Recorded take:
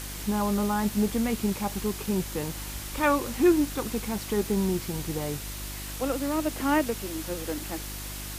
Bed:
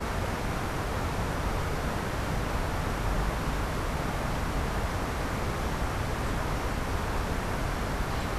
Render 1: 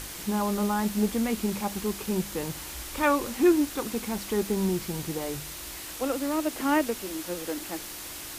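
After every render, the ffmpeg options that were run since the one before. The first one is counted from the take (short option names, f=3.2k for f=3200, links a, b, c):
-af "bandreject=f=50:t=h:w=4,bandreject=f=100:t=h:w=4,bandreject=f=150:t=h:w=4,bandreject=f=200:t=h:w=4,bandreject=f=250:t=h:w=4"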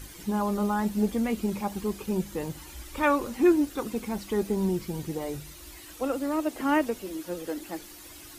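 -af "afftdn=nr=11:nf=-40"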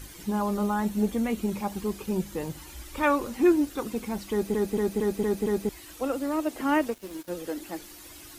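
-filter_complex "[0:a]asettb=1/sr,asplit=3[a][b][c];[a]atrim=end=0.654[d];[b]atrim=start=0.65:end=1.56,asetpts=PTS-STARTPTS,afade=t=in:d=0.004:c=qsin,afade=t=out:st=0.906:d=0.004:c=qsin,bandreject=f=4.9k:w=12[e];[c]atrim=start=1.556[f];[d][e]acrossfade=d=0.004:c1=hsin:c2=qsin[g];[g][f]acrossfade=d=0.004:c1=qsin:c2=hsin,asettb=1/sr,asplit=3[h][i][j];[h]atrim=end=6.884[k];[i]atrim=start=6.88:end=7.28,asetpts=PTS-STARTPTS,afade=t=in:d=0.004:c=qsin,afade=t=out:st=0.396:d=0.004:c=qsin,aeval=exprs='sgn(val(0))*max(abs(val(0))-0.00631,0)':c=same[l];[j]atrim=start=7.276[m];[k][l]acrossfade=d=0.004:c1=hsin:c2=qsin[n];[n][m]acrossfade=d=0.004:c1=qsin:c2=hsin,asplit=7[o][p][q][r][s][t][u];[o]atrim=end=4.542[v];[p]atrim=start=4.308:end=4.542[w];[q]atrim=start=4.308:end=4.542[x];[r]atrim=start=4.308:end=4.542[y];[s]atrim=start=4.308:end=4.542[z];[t]atrim=start=4.308:end=4.542[aa];[u]atrim=start=5.688[ab];[v][w]acrossfade=d=0.004:c1=hsin:c2=hsin[ac];[ac][x]acrossfade=d=0.004:c1=hsin:c2=hsin[ad];[ad][y]acrossfade=d=0.004:c1=hsin:c2=hsin[ae];[ae][z]acrossfade=d=0.004:c1=hsin:c2=hsin[af];[af][aa]acrossfade=d=0.004:c1=hsin:c2=hsin[ag];[ag][ab]acrossfade=d=0.004:c1=hsin:c2=hsin"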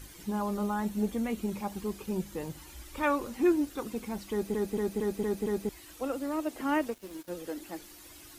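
-af "volume=-4.5dB"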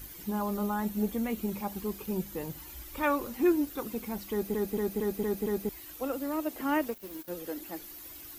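-af "aexciter=amount=3.9:drive=5.2:freq=12k"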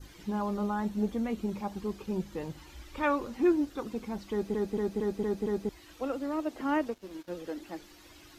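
-af "lowpass=5.3k,adynamicequalizer=threshold=0.002:dfrequency=2400:dqfactor=1.3:tfrequency=2400:tqfactor=1.3:attack=5:release=100:ratio=0.375:range=2:mode=cutabove:tftype=bell"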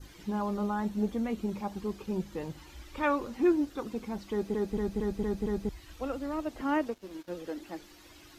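-filter_complex "[0:a]asplit=3[a][b][c];[a]afade=t=out:st=4.7:d=0.02[d];[b]asubboost=boost=3.5:cutoff=150,afade=t=in:st=4.7:d=0.02,afade=t=out:st=6.61:d=0.02[e];[c]afade=t=in:st=6.61:d=0.02[f];[d][e][f]amix=inputs=3:normalize=0"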